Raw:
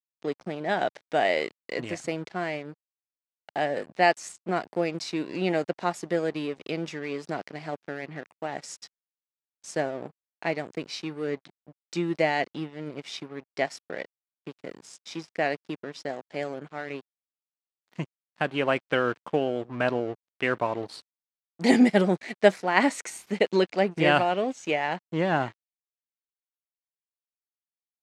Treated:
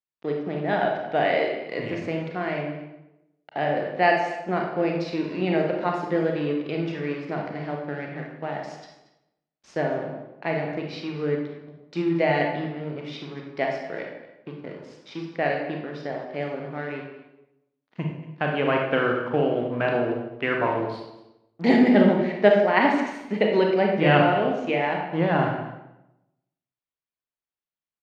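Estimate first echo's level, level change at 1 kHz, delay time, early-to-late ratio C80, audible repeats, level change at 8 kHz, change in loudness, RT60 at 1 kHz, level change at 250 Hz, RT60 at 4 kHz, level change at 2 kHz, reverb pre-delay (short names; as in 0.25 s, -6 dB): -16.5 dB, +3.0 dB, 0.231 s, 5.5 dB, 1, under -10 dB, +3.5 dB, 0.90 s, +4.0 dB, 0.75 s, +2.0 dB, 28 ms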